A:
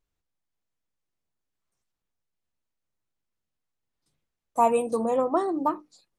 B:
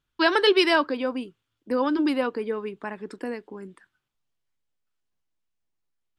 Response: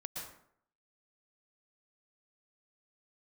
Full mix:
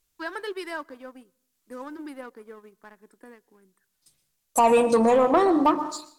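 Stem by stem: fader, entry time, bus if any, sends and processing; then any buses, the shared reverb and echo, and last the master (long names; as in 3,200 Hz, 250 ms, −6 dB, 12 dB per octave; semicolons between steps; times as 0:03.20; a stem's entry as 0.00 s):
+2.0 dB, 0.00 s, send −7.5 dB, treble cut that deepens with the level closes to 3,000 Hz, closed at −21 dBFS; high-shelf EQ 8,300 Hz +9 dB; brickwall limiter −17 dBFS, peak gain reduction 7 dB
−19.0 dB, 0.00 s, send −22 dB, flat-topped bell 3,900 Hz −13 dB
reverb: on, RT60 0.65 s, pre-delay 107 ms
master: high-shelf EQ 2,200 Hz +11.5 dB; leveller curve on the samples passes 1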